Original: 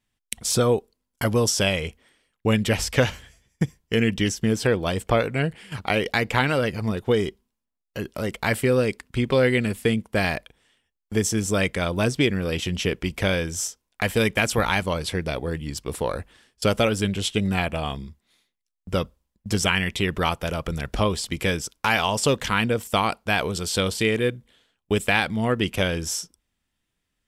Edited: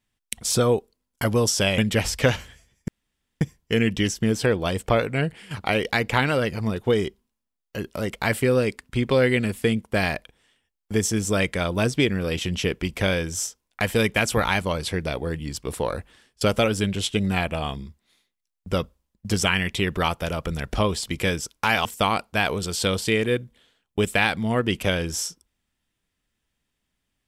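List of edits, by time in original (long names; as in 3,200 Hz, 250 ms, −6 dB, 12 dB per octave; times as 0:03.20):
0:01.78–0:02.52: remove
0:03.62: splice in room tone 0.53 s
0:22.06–0:22.78: remove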